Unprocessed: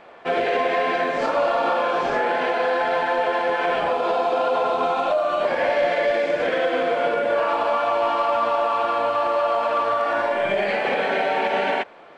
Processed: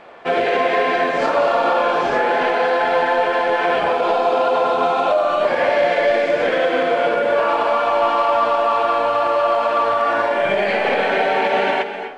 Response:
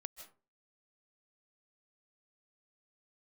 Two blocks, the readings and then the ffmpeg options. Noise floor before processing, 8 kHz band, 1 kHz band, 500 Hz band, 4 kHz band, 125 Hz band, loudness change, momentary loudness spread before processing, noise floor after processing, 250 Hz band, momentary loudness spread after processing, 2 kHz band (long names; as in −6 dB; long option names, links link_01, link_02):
−29 dBFS, can't be measured, +4.0 dB, +4.0 dB, +4.0 dB, +4.0 dB, +4.0 dB, 1 LU, −24 dBFS, +4.0 dB, 1 LU, +4.0 dB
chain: -filter_complex "[0:a]asplit=2[link_01][link_02];[1:a]atrim=start_sample=2205,asetrate=28224,aresample=44100[link_03];[link_02][link_03]afir=irnorm=-1:irlink=0,volume=10.5dB[link_04];[link_01][link_04]amix=inputs=2:normalize=0,volume=-7dB"